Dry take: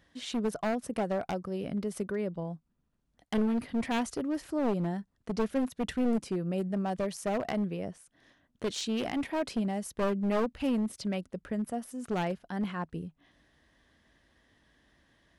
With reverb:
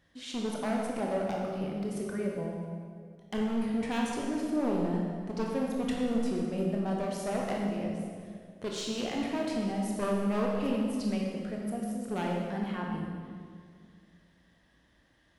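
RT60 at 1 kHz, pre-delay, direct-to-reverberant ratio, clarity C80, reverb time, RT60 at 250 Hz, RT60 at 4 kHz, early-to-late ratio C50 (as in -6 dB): 1.9 s, 18 ms, -2.0 dB, 2.0 dB, 2.0 s, 2.6 s, 1.6 s, 0.0 dB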